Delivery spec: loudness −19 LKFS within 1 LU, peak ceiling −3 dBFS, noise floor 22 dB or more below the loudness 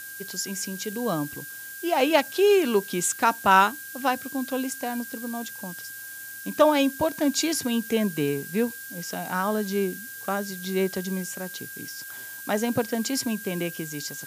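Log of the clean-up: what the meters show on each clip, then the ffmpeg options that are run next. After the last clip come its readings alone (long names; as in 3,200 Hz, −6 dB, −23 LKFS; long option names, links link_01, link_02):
interfering tone 1,600 Hz; level of the tone −40 dBFS; background noise floor −39 dBFS; target noise floor −48 dBFS; integrated loudness −26.0 LKFS; sample peak −5.0 dBFS; target loudness −19.0 LKFS
→ -af "bandreject=frequency=1600:width=30"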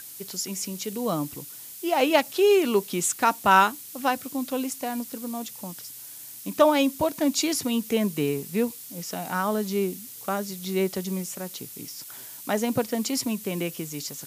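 interfering tone none found; background noise floor −42 dBFS; target noise floor −48 dBFS
→ -af "afftdn=noise_reduction=6:noise_floor=-42"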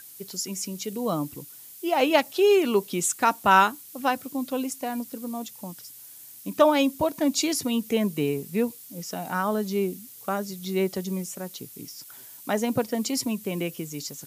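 background noise floor −46 dBFS; target noise floor −48 dBFS
→ -af "afftdn=noise_reduction=6:noise_floor=-46"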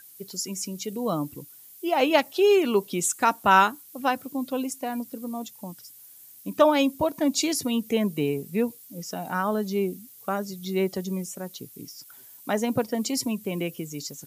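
background noise floor −49 dBFS; integrated loudness −26.0 LKFS; sample peak −5.5 dBFS; target loudness −19.0 LKFS
→ -af "volume=7dB,alimiter=limit=-3dB:level=0:latency=1"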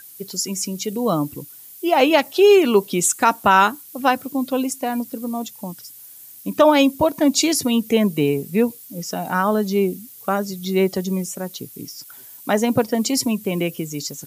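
integrated loudness −19.5 LKFS; sample peak −3.0 dBFS; background noise floor −42 dBFS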